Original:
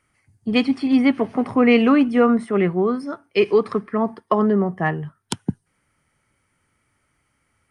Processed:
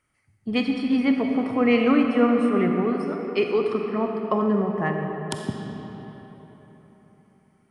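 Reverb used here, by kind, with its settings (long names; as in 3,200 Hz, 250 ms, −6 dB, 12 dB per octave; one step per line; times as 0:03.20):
comb and all-pass reverb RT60 4.1 s, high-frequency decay 0.6×, pre-delay 5 ms, DRR 2.5 dB
level −5.5 dB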